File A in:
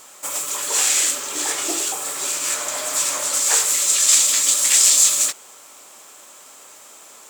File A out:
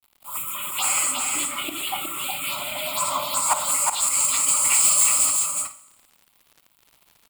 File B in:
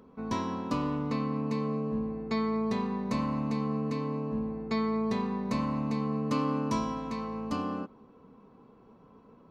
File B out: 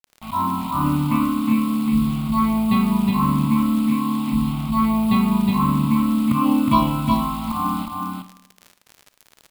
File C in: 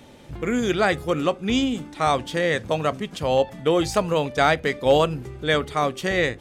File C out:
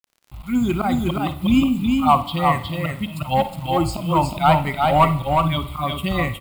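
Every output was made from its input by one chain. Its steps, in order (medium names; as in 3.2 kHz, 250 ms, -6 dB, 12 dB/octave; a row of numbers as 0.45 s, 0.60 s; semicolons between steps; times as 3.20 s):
expander on every frequency bin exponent 1.5; dynamic bell 1 kHz, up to +5 dB, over -40 dBFS, Q 1.2; slow attack 139 ms; touch-sensitive phaser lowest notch 300 Hz, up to 3.6 kHz, full sweep at -21 dBFS; in parallel at -3.5 dB: wavefolder -16.5 dBFS; on the sum: bit crusher 8-bit; static phaser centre 1.7 kHz, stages 6; crackle 28 per s -42 dBFS; on a send: multi-tap echo 58/364/413 ms -14.5/-3.5/-16 dB; on the sum: Schroeder reverb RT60 0.9 s, combs from 27 ms, DRR 15 dB; normalise loudness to -20 LUFS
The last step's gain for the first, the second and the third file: +4.5 dB, +14.0 dB, +6.5 dB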